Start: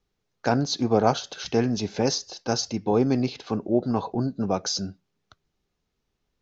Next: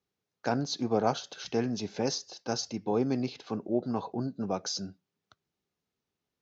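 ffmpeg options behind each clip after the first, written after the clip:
ffmpeg -i in.wav -af "highpass=110,volume=-6.5dB" out.wav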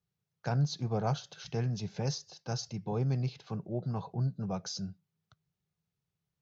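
ffmpeg -i in.wav -af "lowshelf=frequency=200:width_type=q:width=3:gain=8.5,volume=-5.5dB" out.wav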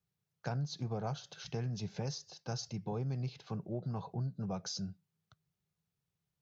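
ffmpeg -i in.wav -af "acompressor=threshold=-33dB:ratio=4,volume=-1dB" out.wav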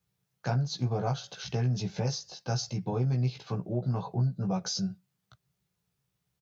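ffmpeg -i in.wav -filter_complex "[0:a]asplit=2[link_01][link_02];[link_02]adelay=16,volume=-3dB[link_03];[link_01][link_03]amix=inputs=2:normalize=0,volume=5.5dB" out.wav

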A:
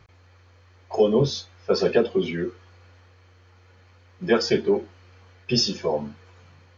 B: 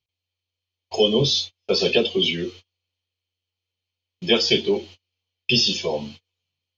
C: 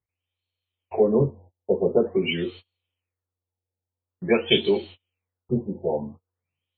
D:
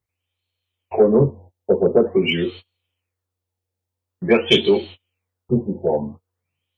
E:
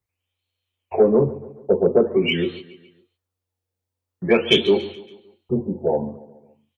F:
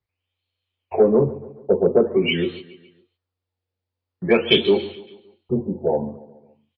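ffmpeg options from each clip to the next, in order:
ffmpeg -i in.wav -filter_complex "[0:a]agate=range=-35dB:threshold=-40dB:ratio=16:detection=peak,acrossover=split=2900[link_01][link_02];[link_02]acompressor=threshold=-36dB:ratio=4:attack=1:release=60[link_03];[link_01][link_03]amix=inputs=2:normalize=0,highshelf=frequency=2200:width_type=q:width=3:gain=11.5" out.wav
ffmpeg -i in.wav -af "afftfilt=real='re*lt(b*sr/1024,920*pow(4500/920,0.5+0.5*sin(2*PI*0.47*pts/sr)))':imag='im*lt(b*sr/1024,920*pow(4500/920,0.5+0.5*sin(2*PI*0.47*pts/sr)))':win_size=1024:overlap=0.75" out.wav
ffmpeg -i in.wav -af "acontrast=48" out.wav
ffmpeg -i in.wav -filter_complex "[0:a]acrossover=split=270|1500[link_01][link_02][link_03];[link_01]alimiter=limit=-19dB:level=0:latency=1:release=19[link_04];[link_04][link_02][link_03]amix=inputs=3:normalize=0,aecho=1:1:141|282|423|564:0.126|0.0642|0.0327|0.0167,volume=-1dB" out.wav
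ffmpeg -i in.wav -af "aresample=11025,aresample=44100" out.wav

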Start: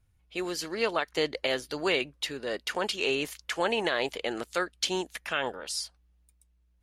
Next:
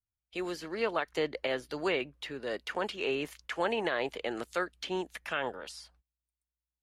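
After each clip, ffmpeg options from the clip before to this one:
ffmpeg -i in.wav -filter_complex "[0:a]agate=range=-25dB:threshold=-53dB:ratio=16:detection=peak,acrossover=split=220|2800[link_01][link_02][link_03];[link_03]acompressor=threshold=-45dB:ratio=10[link_04];[link_01][link_02][link_04]amix=inputs=3:normalize=0,volume=-2.5dB" out.wav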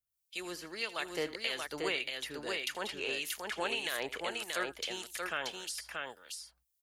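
ffmpeg -i in.wav -filter_complex "[0:a]acrossover=split=2000[link_01][link_02];[link_01]aeval=exprs='val(0)*(1-0.7/2+0.7/2*cos(2*PI*1.7*n/s))':channel_layout=same[link_03];[link_02]aeval=exprs='val(0)*(1-0.7/2-0.7/2*cos(2*PI*1.7*n/s))':channel_layout=same[link_04];[link_03][link_04]amix=inputs=2:normalize=0,crystalizer=i=6.5:c=0,asplit=2[link_05][link_06];[link_06]aecho=0:1:80|631:0.126|0.668[link_07];[link_05][link_07]amix=inputs=2:normalize=0,volume=-5.5dB" out.wav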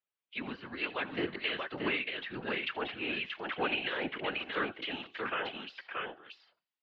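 ffmpeg -i in.wav -af "highpass=frequency=290:width_type=q:width=0.5412,highpass=frequency=290:width_type=q:width=1.307,lowpass=frequency=3400:width_type=q:width=0.5176,lowpass=frequency=3400:width_type=q:width=0.7071,lowpass=frequency=3400:width_type=q:width=1.932,afreqshift=-98,bandreject=frequency=373.6:width_type=h:width=4,bandreject=frequency=747.2:width_type=h:width=4,bandreject=frequency=1120.8:width_type=h:width=4,bandreject=frequency=1494.4:width_type=h:width=4,bandreject=frequency=1868:width_type=h:width=4,bandreject=frequency=2241.6:width_type=h:width=4,bandreject=frequency=2615.2:width_type=h:width=4,bandreject=frequency=2988.8:width_type=h:width=4,bandreject=frequency=3362.4:width_type=h:width=4,bandreject=frequency=3736:width_type=h:width=4,bandreject=frequency=4109.6:width_type=h:width=4,bandreject=frequency=4483.2:width_type=h:width=4,bandreject=frequency=4856.8:width_type=h:width=4,bandreject=frequency=5230.4:width_type=h:width=4,bandreject=frequency=5604:width_type=h:width=4,bandreject=frequency=5977.6:width_type=h:width=4,bandreject=frequency=6351.2:width_type=h:width=4,bandreject=frequency=6724.8:width_type=h:width=4,bandreject=frequency=7098.4:width_type=h:width=4,bandreject=frequency=7472:width_type=h:width=4,bandreject=frequency=7845.6:width_type=h:width=4,bandreject=frequency=8219.2:width_type=h:width=4,bandreject=frequency=8592.8:width_type=h:width=4,bandreject=frequency=8966.4:width_type=h:width=4,bandreject=frequency=9340:width_type=h:width=4,bandreject=frequency=9713.6:width_type=h:width=4,bandreject=frequency=10087.2:width_type=h:width=4,afftfilt=real='hypot(re,im)*cos(2*PI*random(0))':imag='hypot(re,im)*sin(2*PI*random(1))':win_size=512:overlap=0.75,volume=8.5dB" out.wav

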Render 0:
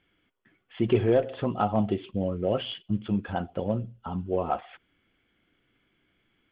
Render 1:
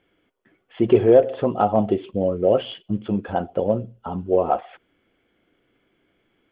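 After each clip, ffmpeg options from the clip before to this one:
ffmpeg -i in.wav -af "equalizer=frequency=510:width_type=o:width=1.9:gain=10" out.wav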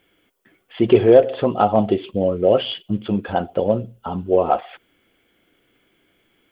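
ffmpeg -i in.wav -af "crystalizer=i=3.5:c=0,volume=2dB" out.wav

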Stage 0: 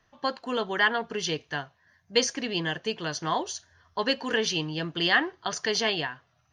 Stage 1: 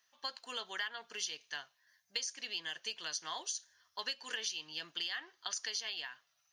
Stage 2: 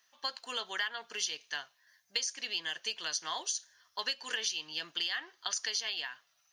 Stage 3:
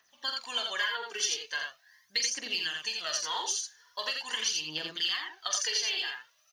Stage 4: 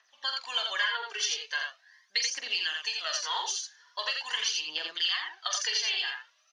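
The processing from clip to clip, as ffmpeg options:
ffmpeg -i in.wav -af "aderivative,acompressor=threshold=-39dB:ratio=12,volume=4dB" out.wav
ffmpeg -i in.wav -af "lowshelf=frequency=140:gain=-6,volume=4.5dB" out.wav
ffmpeg -i in.wav -filter_complex "[0:a]aphaser=in_gain=1:out_gain=1:delay=2.7:decay=0.67:speed=0.42:type=triangular,asplit=2[link_01][link_02];[link_02]aecho=0:1:45|85:0.398|0.631[link_03];[link_01][link_03]amix=inputs=2:normalize=0" out.wav
ffmpeg -i in.wav -af "highpass=610,lowpass=5400,volume=2.5dB" out.wav

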